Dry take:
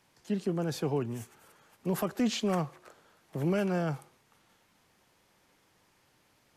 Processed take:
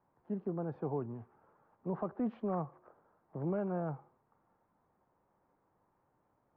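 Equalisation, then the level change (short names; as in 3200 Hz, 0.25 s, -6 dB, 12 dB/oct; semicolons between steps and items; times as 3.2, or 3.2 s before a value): ladder low-pass 1300 Hz, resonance 30%; 0.0 dB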